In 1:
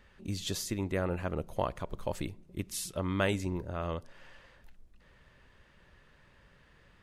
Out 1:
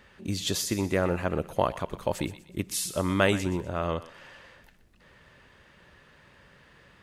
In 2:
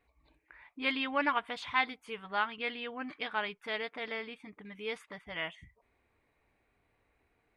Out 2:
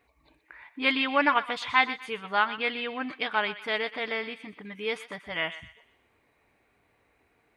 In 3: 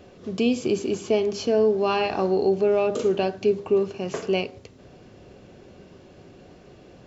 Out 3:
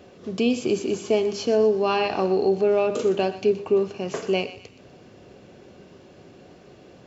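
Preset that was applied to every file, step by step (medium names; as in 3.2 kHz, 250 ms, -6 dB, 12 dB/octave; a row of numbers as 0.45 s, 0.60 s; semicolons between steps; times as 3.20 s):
high-pass 110 Hz 6 dB/octave; thinning echo 123 ms, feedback 42%, high-pass 1.1 kHz, level -12.5 dB; peak normalisation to -9 dBFS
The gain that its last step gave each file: +7.0 dB, +7.0 dB, +1.0 dB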